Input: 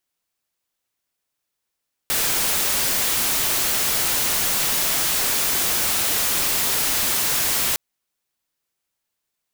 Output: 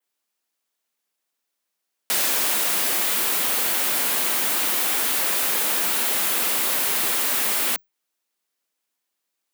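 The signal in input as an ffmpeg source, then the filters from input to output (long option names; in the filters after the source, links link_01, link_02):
-f lavfi -i "anoisesrc=color=white:amplitude=0.154:duration=5.66:sample_rate=44100:seed=1"
-af "highpass=frequency=73:poles=1,adynamicequalizer=threshold=0.0112:dfrequency=5700:dqfactor=1.1:tfrequency=5700:tqfactor=1.1:attack=5:release=100:ratio=0.375:range=3:mode=cutabove:tftype=bell,afreqshift=130"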